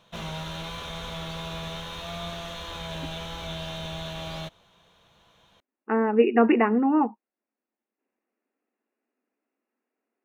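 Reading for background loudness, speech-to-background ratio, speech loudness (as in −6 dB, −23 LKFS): −35.0 LKFS, 13.0 dB, −22.0 LKFS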